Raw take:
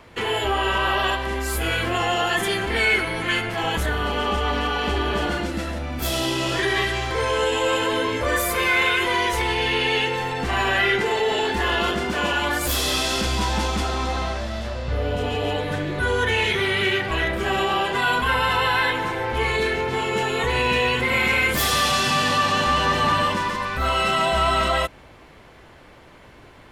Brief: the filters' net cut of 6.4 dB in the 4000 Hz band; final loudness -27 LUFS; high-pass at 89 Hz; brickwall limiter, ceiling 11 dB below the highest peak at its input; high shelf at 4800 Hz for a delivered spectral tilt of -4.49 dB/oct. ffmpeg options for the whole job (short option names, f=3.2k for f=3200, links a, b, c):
-af "highpass=89,equalizer=f=4k:t=o:g=-6.5,highshelf=f=4.8k:g=-6,volume=2.5dB,alimiter=limit=-19.5dB:level=0:latency=1"